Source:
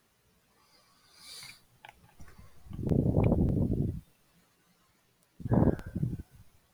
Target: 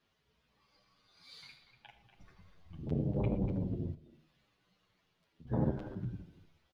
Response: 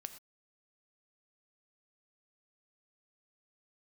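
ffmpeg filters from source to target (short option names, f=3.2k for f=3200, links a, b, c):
-filter_complex "[0:a]firequalizer=gain_entry='entry(1800,0);entry(3200,5);entry(8700,-15)':delay=0.05:min_phase=1,asplit=2[a][b];[b]adelay=240,highpass=300,lowpass=3.4k,asoftclip=type=hard:threshold=-21dB,volume=-10dB[c];[a][c]amix=inputs=2:normalize=0[d];[1:a]atrim=start_sample=2205[e];[d][e]afir=irnorm=-1:irlink=0,asettb=1/sr,asplit=3[f][g][h];[f]atrim=end=3.934[i];[g]atrim=start=3.93:end=5.47,asetpts=PTS-STARTPTS,afade=t=in:d=0.004:c=qsin,afade=t=out:st=1.536:d=0.004:c=qsin,acompressor=threshold=-49dB:ratio=6[j];[h]atrim=start=5.466[k];[i][j]acrossfade=d=0.004:c1=hsin:c2=qsin[l];[l][k]acrossfade=d=0.004:c1=qsin:c2=hsin,asplit=2[m][n];[n]adelay=8.7,afreqshift=-0.78[o];[m][o]amix=inputs=2:normalize=1"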